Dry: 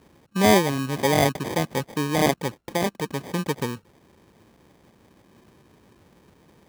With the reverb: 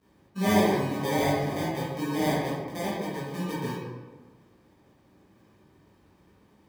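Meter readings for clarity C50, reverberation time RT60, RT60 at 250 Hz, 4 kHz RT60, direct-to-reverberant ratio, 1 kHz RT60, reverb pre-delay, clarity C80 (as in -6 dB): -1.5 dB, 1.4 s, 1.6 s, 0.80 s, -10.0 dB, 1.3 s, 11 ms, 1.5 dB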